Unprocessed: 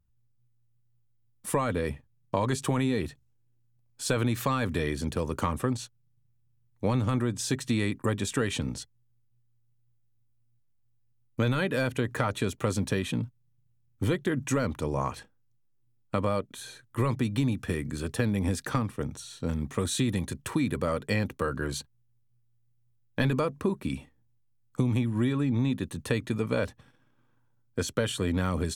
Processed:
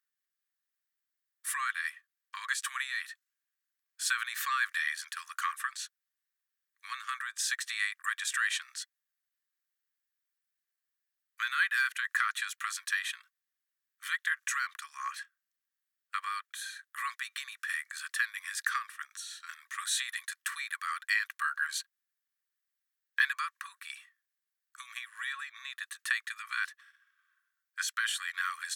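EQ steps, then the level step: rippled Chebyshev high-pass 1.1 kHz, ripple 3 dB; peaking EQ 1.8 kHz +11.5 dB 0.59 oct; treble shelf 7.4 kHz +6.5 dB; -1.0 dB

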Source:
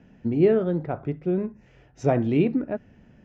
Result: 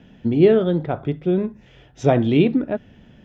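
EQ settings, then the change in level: peaking EQ 3.4 kHz +14.5 dB 0.34 oct; +5.0 dB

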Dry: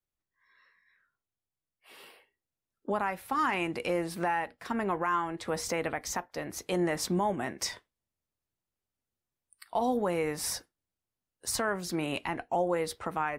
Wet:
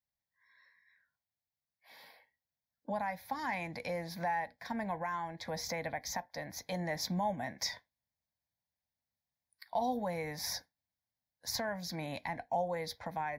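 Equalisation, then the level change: high-pass 89 Hz 6 dB/octave; dynamic bell 1.3 kHz, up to -6 dB, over -42 dBFS, Q 1; static phaser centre 1.9 kHz, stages 8; 0.0 dB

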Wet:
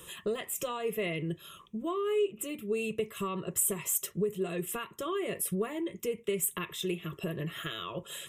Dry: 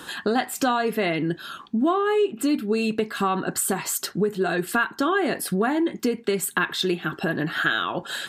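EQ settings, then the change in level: static phaser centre 640 Hz, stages 4; static phaser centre 1.9 kHz, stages 4; 0.0 dB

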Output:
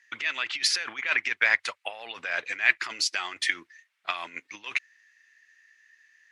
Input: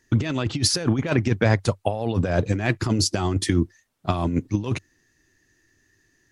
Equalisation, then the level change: resonant high-pass 2.1 kHz, resonance Q 2.4; treble shelf 2.8 kHz -10.5 dB; treble shelf 8.7 kHz -9.5 dB; +6.5 dB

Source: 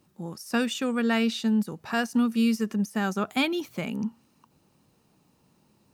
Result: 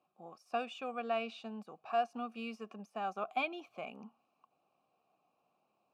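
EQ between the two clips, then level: vowel filter a; +2.5 dB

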